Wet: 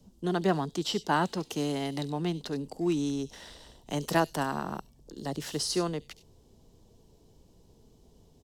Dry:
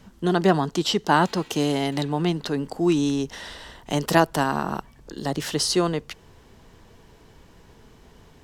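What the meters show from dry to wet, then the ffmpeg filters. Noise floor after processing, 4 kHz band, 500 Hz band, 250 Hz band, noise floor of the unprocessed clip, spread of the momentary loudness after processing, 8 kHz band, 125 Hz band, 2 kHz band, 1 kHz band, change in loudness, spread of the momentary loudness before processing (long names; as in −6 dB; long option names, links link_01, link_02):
−61 dBFS, −8.0 dB, −7.5 dB, −7.5 dB, −52 dBFS, 13 LU, −7.0 dB, −7.5 dB, −8.5 dB, −8.0 dB, −7.5 dB, 14 LU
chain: -filter_complex "[0:a]acrossover=split=110|840|3400[link_01][link_02][link_03][link_04];[link_03]aeval=exprs='sgn(val(0))*max(abs(val(0))-0.00562,0)':channel_layout=same[link_05];[link_04]aecho=1:1:70|97:0.299|0.224[link_06];[link_01][link_02][link_05][link_06]amix=inputs=4:normalize=0,volume=-7.5dB"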